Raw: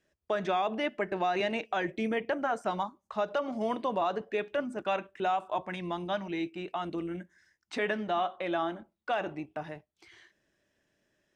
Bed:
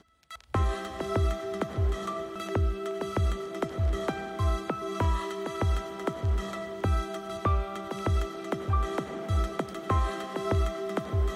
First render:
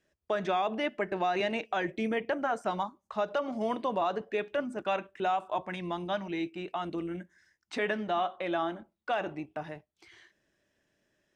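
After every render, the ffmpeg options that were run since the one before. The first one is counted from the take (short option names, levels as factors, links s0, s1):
-af anull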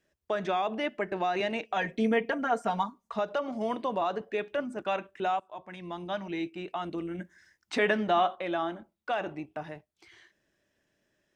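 -filter_complex "[0:a]asettb=1/sr,asplit=3[s0][s1][s2];[s0]atrim=end=1.764[s3];[s1]atrim=start=1.76:end=3.19,asetpts=PTS-STARTPTS,afade=t=in:d=0.004:c=qsin,afade=t=out:st=1.426:d=0.004:c=qsin,aecho=1:1:4.3:0.86,atrim=end_sample=63063[s4];[s2]atrim=start=3.186[s5];[s3][s4]acrossfade=d=0.004:c1=hsin:c2=qsin[s6];[s6][s5]acrossfade=d=0.004:c1=qsin:c2=hsin,asplit=4[s7][s8][s9][s10];[s7]atrim=end=5.4,asetpts=PTS-STARTPTS,afade=t=out:st=5.396:d=0.004:c=hsin:silence=0.141254[s11];[s8]atrim=start=5.4:end=7.192,asetpts=PTS-STARTPTS,afade=t=in:d=0.89:silence=0.141254[s12];[s9]atrim=start=7.188:end=8.352,asetpts=PTS-STARTPTS,volume=1.78[s13];[s10]atrim=start=8.348[s14];[s11][s12]concat=n=2:v=0:a=1[s15];[s15][s13]acrossfade=d=0.004:c1=hsin:c2=hsin[s16];[s16][s14]acrossfade=d=0.004:c1=hsin:c2=hsin"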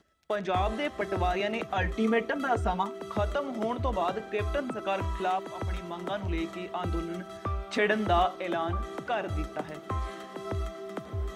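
-filter_complex "[1:a]volume=0.473[s0];[0:a][s0]amix=inputs=2:normalize=0"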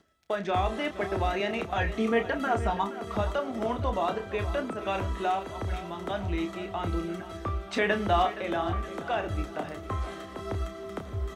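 -filter_complex "[0:a]asplit=2[s0][s1];[s1]adelay=30,volume=0.376[s2];[s0][s2]amix=inputs=2:normalize=0,aecho=1:1:471|942|1413|1884:0.188|0.0829|0.0365|0.016"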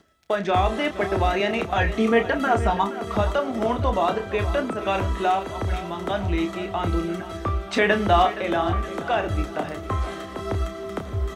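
-af "volume=2.11"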